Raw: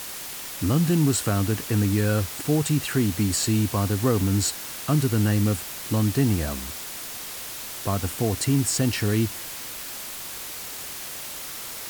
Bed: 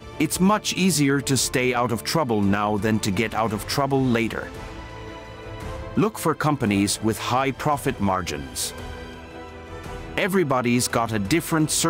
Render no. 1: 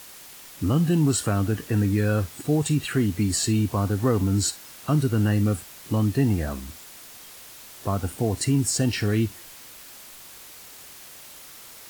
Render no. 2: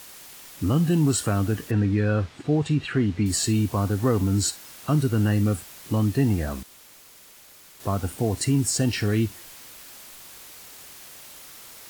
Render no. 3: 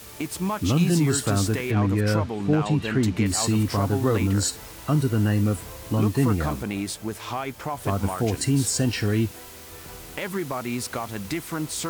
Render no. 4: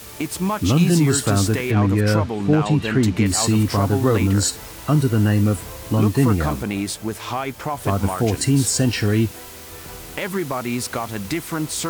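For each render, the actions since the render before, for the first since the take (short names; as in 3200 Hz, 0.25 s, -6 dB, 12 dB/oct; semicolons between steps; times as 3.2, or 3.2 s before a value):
noise print and reduce 9 dB
1.71–3.26 LPF 3800 Hz; 6.63–7.8 room tone
add bed -8.5 dB
gain +4.5 dB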